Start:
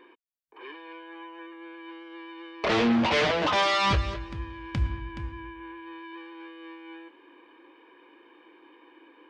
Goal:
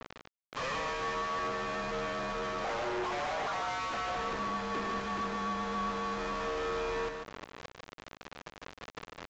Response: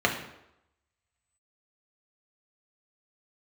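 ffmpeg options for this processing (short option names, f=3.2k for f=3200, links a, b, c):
-filter_complex "[0:a]highpass=350,aemphasis=mode=reproduction:type=75fm,afreqshift=130,acrusher=bits=7:mix=0:aa=0.000001,asplit=2[a][b];[b]highpass=f=720:p=1,volume=29dB,asoftclip=type=tanh:threshold=-26.5dB[c];[a][c]amix=inputs=2:normalize=0,lowpass=f=3k:p=1,volume=-6dB,asoftclip=type=hard:threshold=-36.5dB,asplit=2[d][e];[e]aecho=0:1:148:0.562[f];[d][f]amix=inputs=2:normalize=0,aresample=16000,aresample=44100,adynamicequalizer=threshold=0.00282:dfrequency=2000:dqfactor=0.7:tfrequency=2000:tqfactor=0.7:attack=5:release=100:ratio=0.375:range=3.5:mode=cutabove:tftype=highshelf,volume=3dB"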